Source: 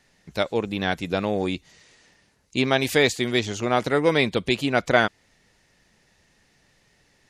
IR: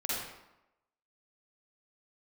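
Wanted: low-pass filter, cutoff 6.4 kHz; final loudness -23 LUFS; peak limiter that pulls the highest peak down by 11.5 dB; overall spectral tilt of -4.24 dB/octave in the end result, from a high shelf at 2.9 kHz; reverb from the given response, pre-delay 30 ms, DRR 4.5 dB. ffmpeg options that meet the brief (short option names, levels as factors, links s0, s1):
-filter_complex "[0:a]lowpass=6400,highshelf=f=2900:g=-3.5,alimiter=limit=0.15:level=0:latency=1,asplit=2[s0][s1];[1:a]atrim=start_sample=2205,adelay=30[s2];[s1][s2]afir=irnorm=-1:irlink=0,volume=0.299[s3];[s0][s3]amix=inputs=2:normalize=0,volume=1.68"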